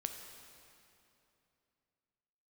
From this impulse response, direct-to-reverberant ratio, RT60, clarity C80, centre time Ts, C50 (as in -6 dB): 4.5 dB, 2.9 s, 6.5 dB, 53 ms, 5.5 dB